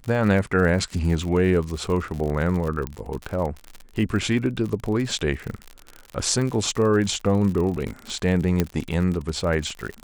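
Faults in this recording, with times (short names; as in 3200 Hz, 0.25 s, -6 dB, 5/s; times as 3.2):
crackle 65/s -28 dBFS
2.87 pop -15 dBFS
8.6 pop -7 dBFS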